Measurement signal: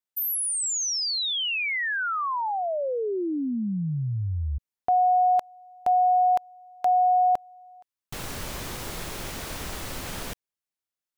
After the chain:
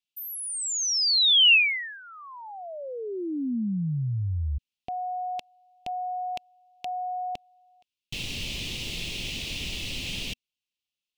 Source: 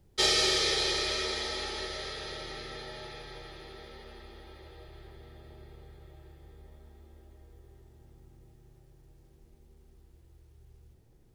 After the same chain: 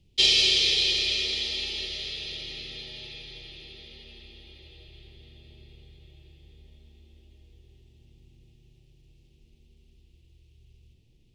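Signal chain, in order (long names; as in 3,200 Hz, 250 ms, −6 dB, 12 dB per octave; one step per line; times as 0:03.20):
drawn EQ curve 240 Hz 0 dB, 1,500 Hz −19 dB, 2,700 Hz +12 dB, 12,000 Hz −9 dB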